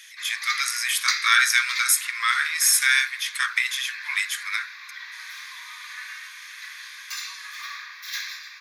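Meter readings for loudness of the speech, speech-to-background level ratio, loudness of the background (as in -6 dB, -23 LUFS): -21.5 LUFS, 11.5 dB, -33.0 LUFS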